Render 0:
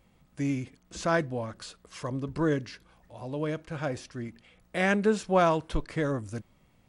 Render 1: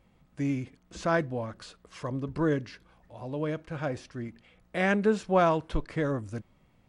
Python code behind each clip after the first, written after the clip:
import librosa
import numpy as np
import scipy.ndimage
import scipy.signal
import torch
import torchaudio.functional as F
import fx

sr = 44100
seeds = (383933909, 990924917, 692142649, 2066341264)

y = fx.high_shelf(x, sr, hz=5000.0, db=-8.5)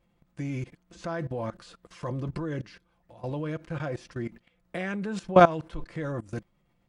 y = x + 0.47 * np.pad(x, (int(5.8 * sr / 1000.0), 0))[:len(x)]
y = fx.level_steps(y, sr, step_db=19)
y = y * 10.0 ** (6.5 / 20.0)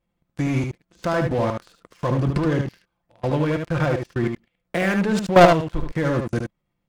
y = fx.leveller(x, sr, passes=3)
y = y + 10.0 ** (-5.5 / 20.0) * np.pad(y, (int(74 * sr / 1000.0), 0))[:len(y)]
y = y * 10.0 ** (-1.0 / 20.0)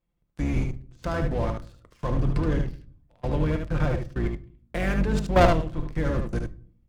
y = fx.octave_divider(x, sr, octaves=2, level_db=4.0)
y = fx.room_shoebox(y, sr, seeds[0], volume_m3=530.0, walls='furnished', distance_m=0.44)
y = y * 10.0 ** (-7.0 / 20.0)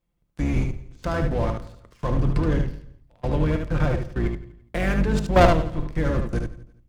y = fx.echo_feedback(x, sr, ms=169, feedback_pct=25, wet_db=-20.5)
y = y * 10.0 ** (2.5 / 20.0)